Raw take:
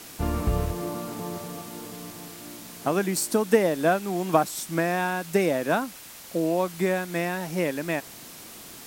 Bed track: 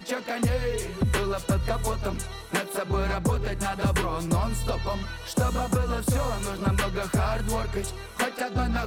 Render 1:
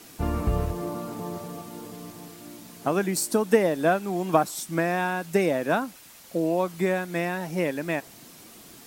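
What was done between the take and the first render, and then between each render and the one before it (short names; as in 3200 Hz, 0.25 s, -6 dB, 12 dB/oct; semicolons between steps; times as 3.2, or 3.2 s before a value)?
denoiser 6 dB, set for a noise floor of -44 dBFS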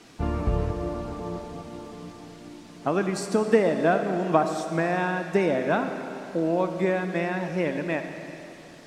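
air absorption 92 m; digital reverb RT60 3 s, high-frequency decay 0.9×, pre-delay 20 ms, DRR 6.5 dB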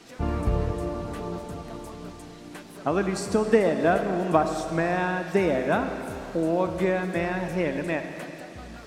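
add bed track -17 dB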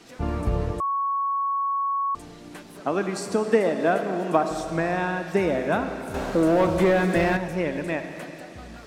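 0.8–2.15 bleep 1110 Hz -22 dBFS; 2.8–4.51 HPF 180 Hz; 6.14–7.37 sample leveller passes 2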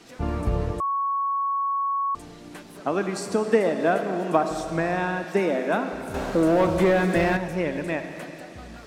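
5.24–5.93 steep high-pass 180 Hz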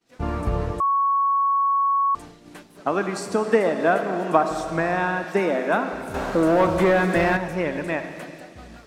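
expander -38 dBFS; dynamic EQ 1200 Hz, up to +5 dB, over -38 dBFS, Q 0.84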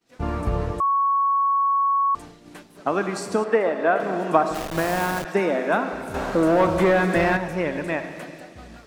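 3.44–4 tone controls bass -10 dB, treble -13 dB; 4.54–5.25 level-crossing sampler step -24.5 dBFS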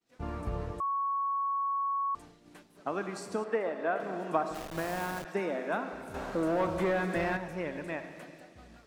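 gain -11 dB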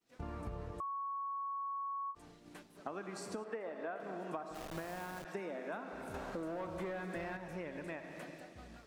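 compressor 4:1, threshold -41 dBFS, peak gain reduction 15.5 dB; ending taper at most 330 dB/s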